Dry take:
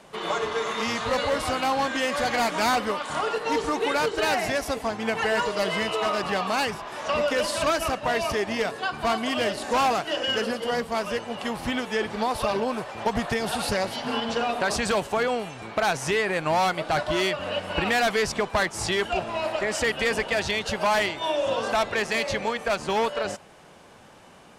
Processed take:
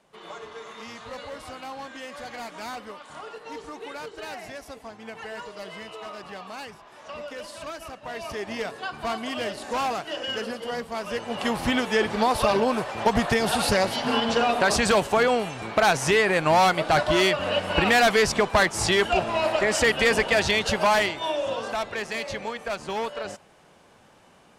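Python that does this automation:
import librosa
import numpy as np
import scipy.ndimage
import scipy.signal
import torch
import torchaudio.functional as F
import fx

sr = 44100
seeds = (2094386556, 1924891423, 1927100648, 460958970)

y = fx.gain(x, sr, db=fx.line((7.95, -13.0), (8.52, -4.5), (10.99, -4.5), (11.43, 4.0), (20.69, 4.0), (21.75, -5.0)))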